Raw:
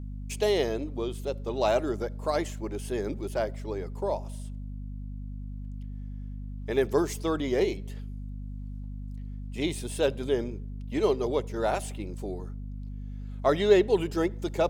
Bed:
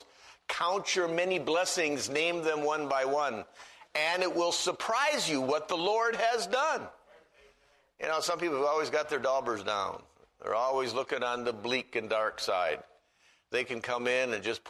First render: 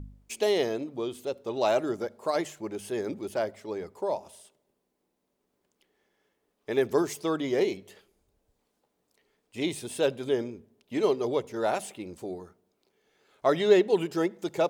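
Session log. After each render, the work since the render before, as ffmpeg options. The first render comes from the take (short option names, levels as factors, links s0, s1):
-af "bandreject=f=50:t=h:w=4,bandreject=f=100:t=h:w=4,bandreject=f=150:t=h:w=4,bandreject=f=200:t=h:w=4,bandreject=f=250:t=h:w=4"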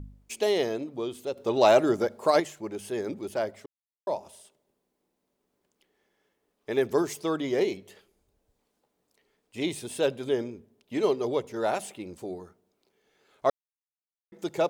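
-filter_complex "[0:a]asettb=1/sr,asplit=3[s0][s1][s2];[s0]atrim=end=1.374[s3];[s1]atrim=start=1.37:end=2.4,asetpts=PTS-STARTPTS,afade=t=in:d=0.004:c=qsin,afade=t=out:st=1.026:d=0.004:c=qsin,acontrast=57[s4];[s2]atrim=start=2.396[s5];[s3][s4]acrossfade=d=0.004:c1=hsin:c2=qsin[s6];[s6][s5]acrossfade=d=0.004:c1=qsin:c2=hsin,asplit=5[s7][s8][s9][s10][s11];[s7]atrim=end=3.66,asetpts=PTS-STARTPTS,afade=t=out:st=3.656:d=0.004:c=hsin[s12];[s8]atrim=start=3.66:end=4.07,asetpts=PTS-STARTPTS,volume=0[s13];[s9]atrim=start=4.07:end=13.5,asetpts=PTS-STARTPTS,afade=t=in:d=0.004:c=hsin,afade=t=out:st=9.426:d=0.004:c=hsin[s14];[s10]atrim=start=13.5:end=14.32,asetpts=PTS-STARTPTS,volume=0[s15];[s11]atrim=start=14.32,asetpts=PTS-STARTPTS,afade=t=in:d=0.004:c=hsin[s16];[s12][s13][s14][s15][s16]concat=n=5:v=0:a=1"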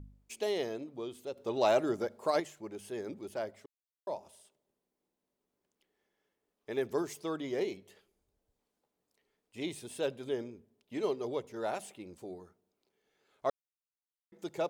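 -af "volume=0.398"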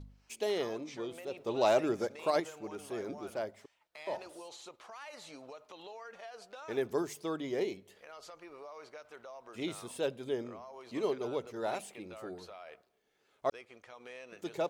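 -filter_complex "[1:a]volume=0.1[s0];[0:a][s0]amix=inputs=2:normalize=0"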